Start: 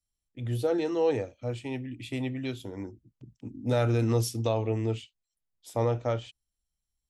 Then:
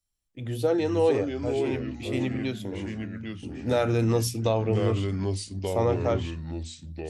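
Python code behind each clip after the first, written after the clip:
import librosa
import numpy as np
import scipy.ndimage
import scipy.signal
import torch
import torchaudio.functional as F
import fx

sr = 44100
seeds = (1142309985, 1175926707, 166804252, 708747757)

y = fx.echo_pitch(x, sr, ms=339, semitones=-3, count=3, db_per_echo=-6.0)
y = fx.hum_notches(y, sr, base_hz=60, count=4)
y = F.gain(torch.from_numpy(y), 3.0).numpy()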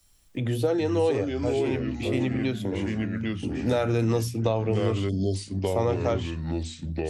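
y = fx.spec_erase(x, sr, start_s=5.09, length_s=0.26, low_hz=730.0, high_hz=3100.0)
y = fx.band_squash(y, sr, depth_pct=70)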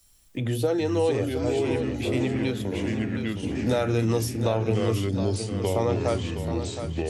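y = fx.high_shelf(x, sr, hz=5700.0, db=5.5)
y = fx.echo_feedback(y, sr, ms=717, feedback_pct=40, wet_db=-9.0)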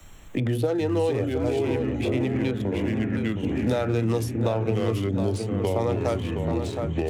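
y = fx.wiener(x, sr, points=9)
y = fx.band_squash(y, sr, depth_pct=70)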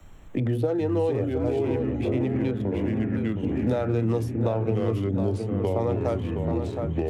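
y = fx.high_shelf(x, sr, hz=2000.0, db=-11.0)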